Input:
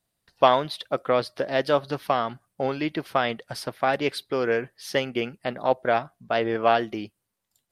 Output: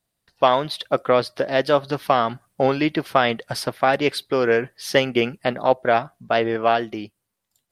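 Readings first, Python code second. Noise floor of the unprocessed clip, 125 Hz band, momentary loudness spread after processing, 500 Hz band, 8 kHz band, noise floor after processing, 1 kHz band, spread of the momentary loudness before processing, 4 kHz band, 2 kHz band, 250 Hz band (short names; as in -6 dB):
-80 dBFS, +5.5 dB, 5 LU, +4.5 dB, +6.0 dB, -79 dBFS, +3.5 dB, 9 LU, +5.0 dB, +5.0 dB, +5.0 dB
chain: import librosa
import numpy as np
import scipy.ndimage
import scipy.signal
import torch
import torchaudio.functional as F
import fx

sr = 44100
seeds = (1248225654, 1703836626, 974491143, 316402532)

y = fx.rider(x, sr, range_db=4, speed_s=0.5)
y = y * 10.0 ** (4.5 / 20.0)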